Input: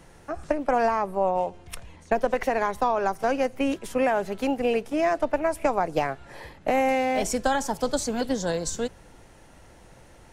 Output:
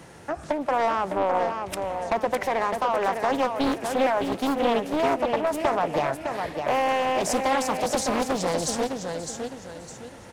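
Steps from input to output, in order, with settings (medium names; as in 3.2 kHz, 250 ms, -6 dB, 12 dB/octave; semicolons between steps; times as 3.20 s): high-pass 91 Hz 12 dB/octave; in parallel at +0.5 dB: compression, threshold -35 dBFS, peak gain reduction 16 dB; on the sum: saturation -15.5 dBFS, distortion -17 dB; feedback delay 608 ms, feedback 35%, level -6 dB; on a send at -20 dB: reverberation RT60 2.8 s, pre-delay 88 ms; on the sum: loudspeaker Doppler distortion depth 0.62 ms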